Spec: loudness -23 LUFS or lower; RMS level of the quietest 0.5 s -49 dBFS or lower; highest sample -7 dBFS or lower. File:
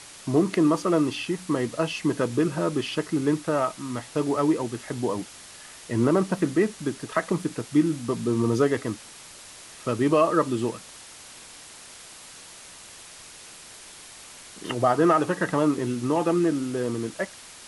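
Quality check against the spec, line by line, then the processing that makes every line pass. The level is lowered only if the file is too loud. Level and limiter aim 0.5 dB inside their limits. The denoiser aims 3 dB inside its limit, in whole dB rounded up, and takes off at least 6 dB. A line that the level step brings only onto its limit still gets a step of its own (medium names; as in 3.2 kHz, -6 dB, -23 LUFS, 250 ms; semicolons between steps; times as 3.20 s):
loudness -25.0 LUFS: pass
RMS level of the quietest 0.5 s -45 dBFS: fail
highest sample -8.0 dBFS: pass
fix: noise reduction 7 dB, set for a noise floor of -45 dBFS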